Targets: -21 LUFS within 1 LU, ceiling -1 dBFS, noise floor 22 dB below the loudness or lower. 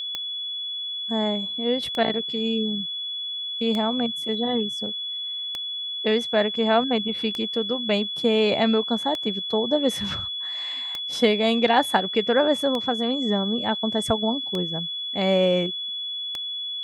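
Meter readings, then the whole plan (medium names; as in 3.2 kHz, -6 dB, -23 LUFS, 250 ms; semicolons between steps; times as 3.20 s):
clicks found 10; steady tone 3.4 kHz; tone level -28 dBFS; loudness -24.0 LUFS; peak level -5.5 dBFS; loudness target -21.0 LUFS
-> de-click; band-stop 3.4 kHz, Q 30; trim +3 dB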